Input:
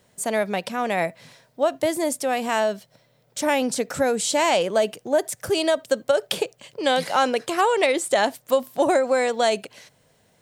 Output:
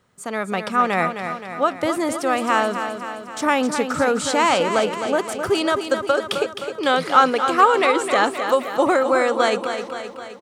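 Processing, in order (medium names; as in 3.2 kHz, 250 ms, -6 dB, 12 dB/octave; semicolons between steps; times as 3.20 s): treble shelf 4.4 kHz -7.5 dB; level rider gain up to 6.5 dB; graphic EQ with 31 bands 630 Hz -7 dB, 1.25 kHz +12 dB, 12.5 kHz -5 dB; on a send: feedback delay 261 ms, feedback 58%, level -8 dB; on the sum: trim -2.5 dB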